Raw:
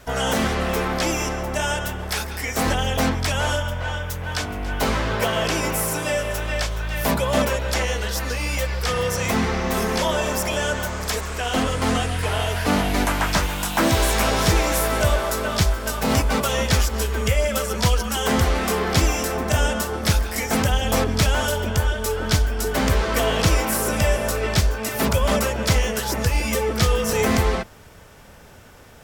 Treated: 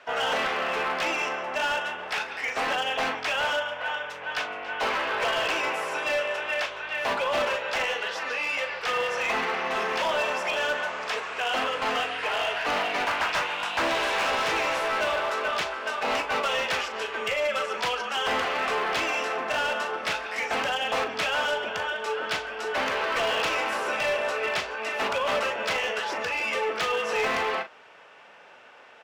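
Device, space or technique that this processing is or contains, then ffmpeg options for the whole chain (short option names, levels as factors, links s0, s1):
megaphone: -filter_complex "[0:a]highpass=610,lowpass=2900,equalizer=f=2700:t=o:w=0.28:g=6,asoftclip=type=hard:threshold=0.0794,asplit=2[s0][s1];[s1]adelay=39,volume=0.316[s2];[s0][s2]amix=inputs=2:normalize=0"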